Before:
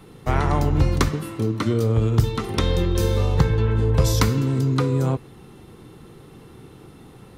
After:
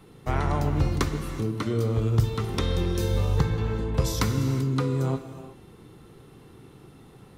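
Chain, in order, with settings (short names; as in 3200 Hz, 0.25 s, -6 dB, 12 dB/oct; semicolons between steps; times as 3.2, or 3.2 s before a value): non-linear reverb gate 0.41 s flat, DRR 8.5 dB; gain -5.5 dB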